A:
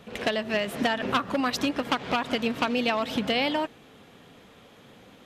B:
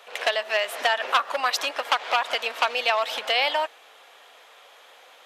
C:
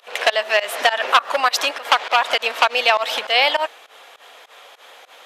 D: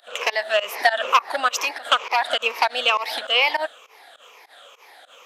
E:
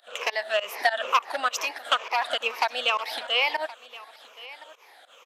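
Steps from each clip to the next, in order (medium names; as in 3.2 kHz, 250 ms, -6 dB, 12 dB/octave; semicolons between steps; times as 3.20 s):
high-pass 600 Hz 24 dB/octave; trim +5 dB
volume shaper 101 bpm, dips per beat 2, -22 dB, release 101 ms; trim +7 dB
drifting ripple filter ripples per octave 0.8, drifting -2.2 Hz, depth 13 dB; trim -5.5 dB
delay 1071 ms -19 dB; trim -5 dB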